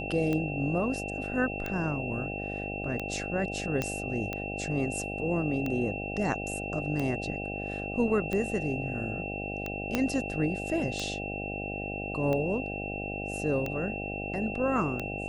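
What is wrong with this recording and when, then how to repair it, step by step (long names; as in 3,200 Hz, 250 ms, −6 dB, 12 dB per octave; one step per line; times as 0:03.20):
mains buzz 50 Hz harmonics 16 −37 dBFS
scratch tick 45 rpm −19 dBFS
whistle 2,700 Hz −37 dBFS
0:03.82: click −15 dBFS
0:09.95: click −12 dBFS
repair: click removal
notch filter 2,700 Hz, Q 30
hum removal 50 Hz, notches 16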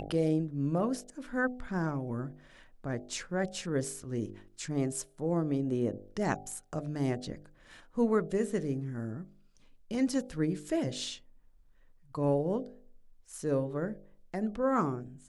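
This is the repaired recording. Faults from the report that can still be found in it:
0:09.95: click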